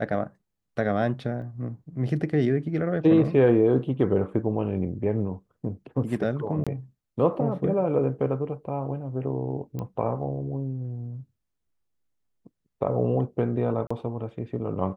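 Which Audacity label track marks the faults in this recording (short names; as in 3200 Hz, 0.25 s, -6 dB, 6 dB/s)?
1.420000	1.420000	gap 2.3 ms
6.640000	6.670000	gap 26 ms
9.790000	9.790000	pop -21 dBFS
13.870000	13.900000	gap 35 ms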